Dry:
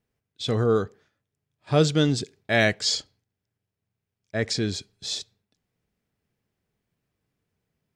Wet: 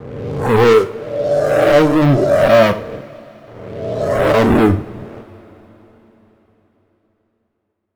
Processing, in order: spectral swells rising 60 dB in 1.76 s; steep low-pass 630 Hz 36 dB/oct; gate with hold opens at -47 dBFS; AGC gain up to 12 dB; 0.73–2.02 tilt +3 dB/oct; sample leveller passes 5; spectral noise reduction 10 dB; two-slope reverb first 0.4 s, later 4.3 s, from -22 dB, DRR 6.5 dB; gain -3.5 dB

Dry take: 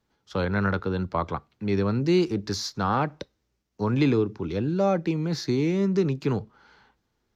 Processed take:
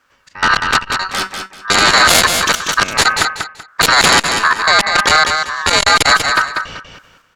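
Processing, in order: 2.94–3.87 tilt shelf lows +8.5 dB, about 870 Hz; 4.39–4.97 LPF 1100 Hz 12 dB/oct; AGC gain up to 11 dB; step gate "xx.x.x.xx...xx" 106 bpm -24 dB; ring modulator 1400 Hz; sine folder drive 17 dB, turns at -2 dBFS; 0.78–1.65 resonator 190 Hz, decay 0.17 s, harmonics all, mix 80%; on a send: feedback echo 0.192 s, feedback 24%, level -6.5 dB; on the sum: core saturation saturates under 540 Hz; gain -3 dB

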